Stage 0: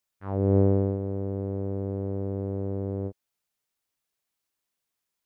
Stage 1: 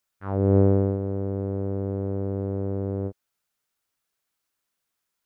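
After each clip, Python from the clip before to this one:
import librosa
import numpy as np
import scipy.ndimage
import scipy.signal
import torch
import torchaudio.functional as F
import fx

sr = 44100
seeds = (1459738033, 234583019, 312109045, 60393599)

y = fx.peak_eq(x, sr, hz=1400.0, db=5.0, octaves=0.46)
y = F.gain(torch.from_numpy(y), 2.5).numpy()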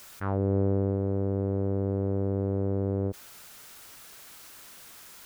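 y = fx.env_flatten(x, sr, amount_pct=70)
y = F.gain(torch.from_numpy(y), -8.0).numpy()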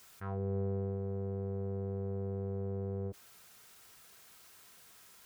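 y = fx.notch_comb(x, sr, f0_hz=290.0)
y = F.gain(torch.from_numpy(y), -8.5).numpy()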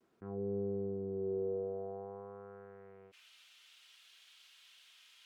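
y = fx.filter_sweep_bandpass(x, sr, from_hz=300.0, to_hz=3100.0, start_s=1.08, end_s=3.29, q=3.0)
y = fx.vibrato(y, sr, rate_hz=0.52, depth_cents=33.0)
y = F.gain(torch.from_numpy(y), 8.0).numpy()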